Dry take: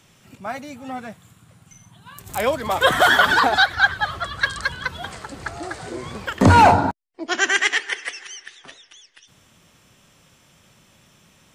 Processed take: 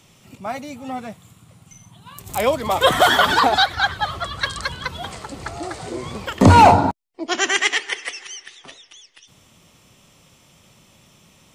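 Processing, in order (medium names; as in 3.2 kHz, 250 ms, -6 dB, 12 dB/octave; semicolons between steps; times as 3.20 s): peaking EQ 1.6 kHz -8 dB 0.38 oct; trim +2.5 dB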